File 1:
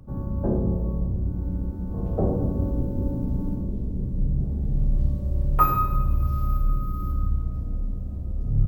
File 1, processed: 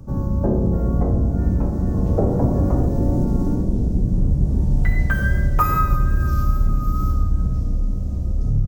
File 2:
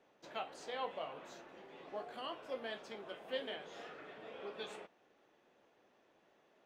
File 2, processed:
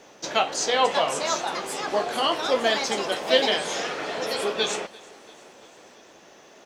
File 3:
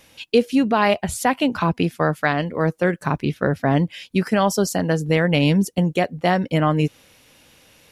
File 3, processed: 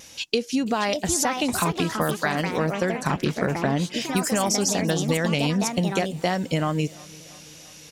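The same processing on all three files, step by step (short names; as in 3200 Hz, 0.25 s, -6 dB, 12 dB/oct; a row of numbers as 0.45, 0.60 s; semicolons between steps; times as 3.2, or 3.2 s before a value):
bell 6100 Hz +13.5 dB 1 oct; compressor, threshold -22 dBFS; feedback echo 0.34 s, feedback 60%, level -23 dB; echoes that change speed 0.664 s, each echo +4 st, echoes 2, each echo -6 dB; wow and flutter 20 cents; normalise peaks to -6 dBFS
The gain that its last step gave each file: +8.0, +19.0, +1.5 dB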